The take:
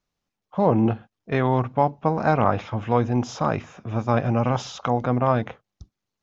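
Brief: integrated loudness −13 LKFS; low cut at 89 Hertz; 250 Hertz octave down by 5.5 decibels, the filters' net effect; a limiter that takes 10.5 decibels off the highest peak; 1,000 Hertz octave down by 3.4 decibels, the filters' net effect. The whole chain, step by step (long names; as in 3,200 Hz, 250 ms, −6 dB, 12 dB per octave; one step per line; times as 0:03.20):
high-pass filter 89 Hz
parametric band 250 Hz −6.5 dB
parametric band 1,000 Hz −4 dB
level +18.5 dB
brickwall limiter 0 dBFS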